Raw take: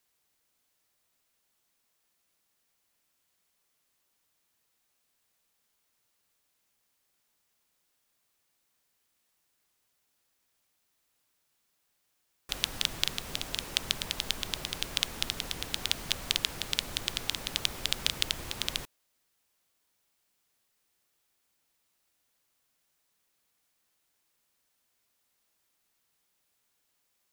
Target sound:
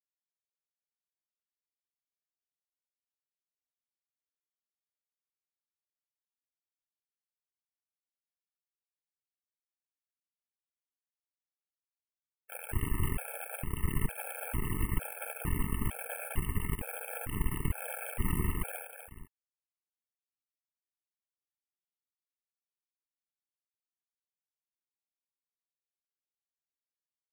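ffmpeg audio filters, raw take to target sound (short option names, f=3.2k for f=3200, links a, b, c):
-filter_complex "[0:a]asubboost=boost=4:cutoff=200,asplit=2[a][b];[b]acontrast=37,volume=0dB[c];[a][c]amix=inputs=2:normalize=0,asoftclip=type=tanh:threshold=-13dB,aeval=exprs='0.224*(cos(1*acos(clip(val(0)/0.224,-1,1)))-cos(1*PI/2))+0.0708*(cos(7*acos(clip(val(0)/0.224,-1,1)))-cos(7*PI/2))':c=same,acrusher=bits=4:mix=0:aa=0.000001,asuperstop=centerf=5000:order=12:qfactor=0.83,asplit=2[d][e];[e]aecho=0:1:84|150|246|426:0.158|0.119|0.447|0.133[f];[d][f]amix=inputs=2:normalize=0,afftfilt=real='re*gt(sin(2*PI*1.1*pts/sr)*(1-2*mod(floor(b*sr/1024/440),2)),0)':imag='im*gt(sin(2*PI*1.1*pts/sr)*(1-2*mod(floor(b*sr/1024/440),2)),0)':win_size=1024:overlap=0.75,volume=-6dB"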